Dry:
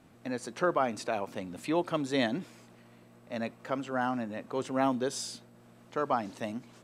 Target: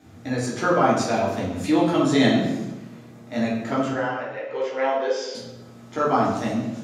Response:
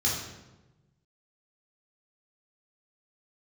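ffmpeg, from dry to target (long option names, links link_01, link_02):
-filter_complex "[0:a]asettb=1/sr,asplit=3[link_01][link_02][link_03];[link_01]atrim=end=3.914[link_04];[link_02]atrim=start=3.91:end=5.35,asetpts=PTS-STARTPTS,afade=type=in:duration=0.004:curve=qsin,afade=type=out:start_time=1.436:duration=0.004:curve=qsin,highpass=frequency=490:width=0.5412,highpass=frequency=490:width=1.3066,equalizer=frequency=500:width_type=q:width=4:gain=10,equalizer=frequency=720:width_type=q:width=4:gain=-9,equalizer=frequency=1200:width_type=q:width=4:gain=-9,equalizer=frequency=2100:width_type=q:width=4:gain=4,equalizer=frequency=3900:width_type=q:width=4:gain=-10,lowpass=frequency=4500:width=0.5412,lowpass=frequency=4500:width=1.3066[link_05];[link_03]atrim=start=5.346[link_06];[link_04][link_05]acrossfade=duration=0.004:curve1=hsin:curve2=qsin[link_07];[link_07][link_06]acrossfade=duration=0.004:curve1=qsin:curve2=hsin[link_08];[1:a]atrim=start_sample=2205[link_09];[link_08][link_09]afir=irnorm=-1:irlink=0"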